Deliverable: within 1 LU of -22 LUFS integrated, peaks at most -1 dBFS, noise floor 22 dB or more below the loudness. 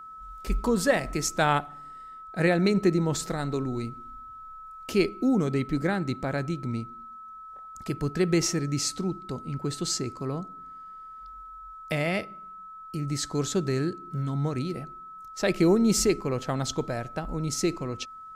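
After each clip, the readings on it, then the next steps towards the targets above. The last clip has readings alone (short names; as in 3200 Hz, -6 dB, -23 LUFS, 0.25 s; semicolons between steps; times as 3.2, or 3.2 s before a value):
steady tone 1300 Hz; tone level -41 dBFS; loudness -27.5 LUFS; peak -10.0 dBFS; loudness target -22.0 LUFS
-> notch 1300 Hz, Q 30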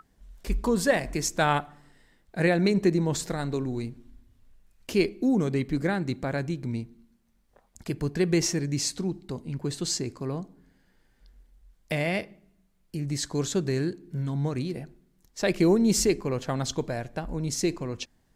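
steady tone none; loudness -27.5 LUFS; peak -10.0 dBFS; loudness target -22.0 LUFS
-> gain +5.5 dB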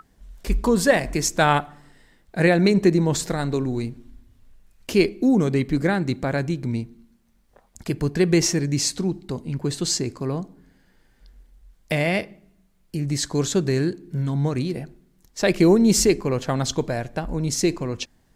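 loudness -22.0 LUFS; peak -4.5 dBFS; noise floor -61 dBFS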